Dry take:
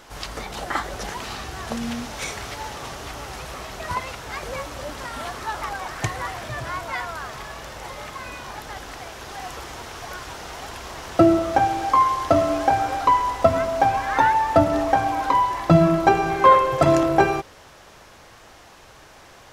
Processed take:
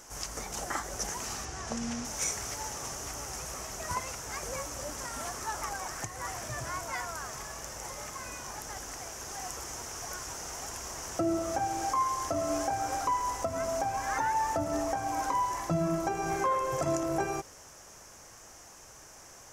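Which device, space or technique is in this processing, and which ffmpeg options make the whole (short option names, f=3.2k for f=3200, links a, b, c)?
over-bright horn tweeter: -filter_complex "[0:a]asettb=1/sr,asplit=3[a][b][c];[a]atrim=end=1.454[d];[b]atrim=start=1.45:end=2.05,asetpts=PTS-STARTPTS,afade=t=in:d=0.004:c=qsin,afade=t=out:st=0.596:d=0.004:c=qsin,lowpass=6.4k[e];[c]atrim=start=2.046[f];[d][e]acrossfade=d=0.004:c1=hsin:c2=qsin[g];[g][f]acrossfade=d=0.004:c1=qsin:c2=hsin,highshelf=f=4.9k:t=q:w=3:g=7.5,alimiter=limit=-13dB:level=0:latency=1:release=254,volume=-7dB"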